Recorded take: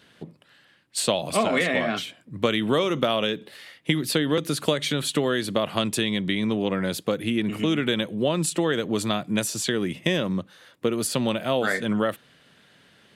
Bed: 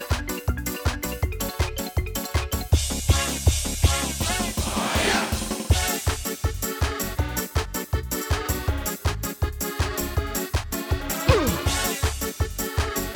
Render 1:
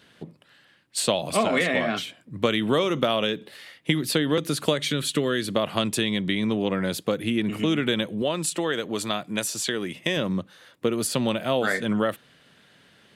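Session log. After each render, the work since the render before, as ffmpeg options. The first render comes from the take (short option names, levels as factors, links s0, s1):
-filter_complex "[0:a]asettb=1/sr,asplit=3[s0][s1][s2];[s0]atrim=end=4.824[s3];[s1]atrim=start=4.82:end=5.49,asetpts=PTS-STARTPTS,afade=t=in:d=0.004:c=qsin,afade=t=out:st=0.666:d=0.004:c=qsin,equalizer=f=790:t=o:w=0.51:g=-10.5[s4];[s2]atrim=start=5.486[s5];[s3][s4]acrossfade=d=0.004:c1=hsin:c2=qsin[s6];[s6][s5]acrossfade=d=0.004:c1=qsin:c2=hsin,asettb=1/sr,asplit=3[s7][s8][s9];[s7]atrim=end=8.224[s10];[s8]atrim=start=8.22:end=10.17,asetpts=PTS-STARTPTS,afade=t=in:d=0.004:c=qsin,afade=t=out:st=1.946:d=0.004:c=qsin,lowshelf=f=300:g=-8.5[s11];[s9]atrim=start=10.166[s12];[s10][s11]acrossfade=d=0.004:c1=hsin:c2=qsin[s13];[s13][s12]acrossfade=d=0.004:c1=qsin:c2=hsin"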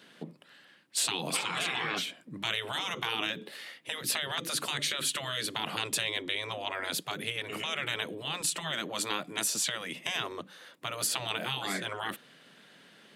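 -af "highpass=f=160:w=0.5412,highpass=f=160:w=1.3066,afftfilt=real='re*lt(hypot(re,im),0.126)':imag='im*lt(hypot(re,im),0.126)':win_size=1024:overlap=0.75"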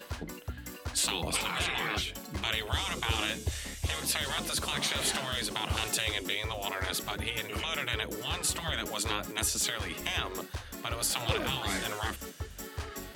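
-filter_complex "[1:a]volume=0.188[s0];[0:a][s0]amix=inputs=2:normalize=0"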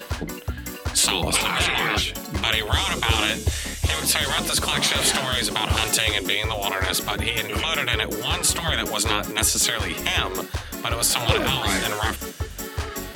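-af "volume=3.16"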